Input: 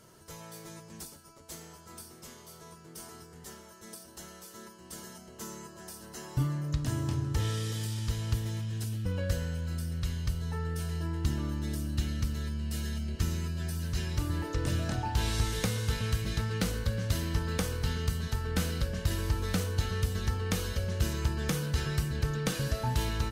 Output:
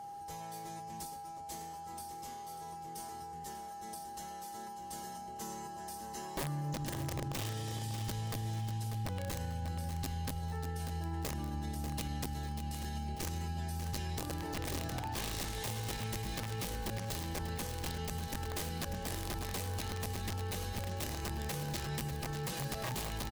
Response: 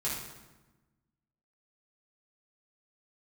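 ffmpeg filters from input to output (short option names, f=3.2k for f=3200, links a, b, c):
-af "aeval=exprs='(mod(15.8*val(0)+1,2)-1)/15.8':c=same,bandreject=f=1.4k:w=8.6,aecho=1:1:592|1184|1776:0.266|0.0878|0.029,aeval=exprs='val(0)+0.00891*sin(2*PI*810*n/s)':c=same,alimiter=level_in=4dB:limit=-24dB:level=0:latency=1:release=66,volume=-4dB,volume=-2.5dB"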